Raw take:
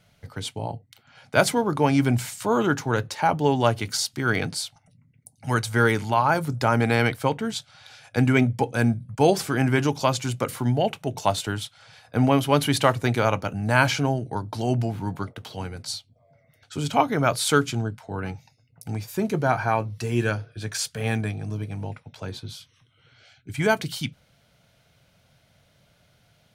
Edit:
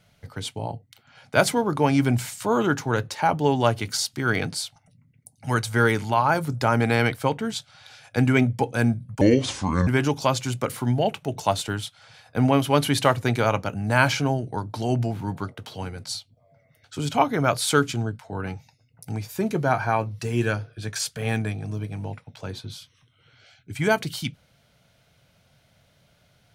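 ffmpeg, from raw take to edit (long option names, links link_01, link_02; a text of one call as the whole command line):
ffmpeg -i in.wav -filter_complex "[0:a]asplit=3[link_01][link_02][link_03];[link_01]atrim=end=9.214[link_04];[link_02]atrim=start=9.21:end=9.66,asetpts=PTS-STARTPTS,asetrate=29988,aresample=44100[link_05];[link_03]atrim=start=9.656[link_06];[link_04][link_05]acrossfade=duration=0.004:curve1=hsin:curve2=hsin[link_07];[link_07][link_06]acrossfade=duration=0.004:curve1=hsin:curve2=hsin" out.wav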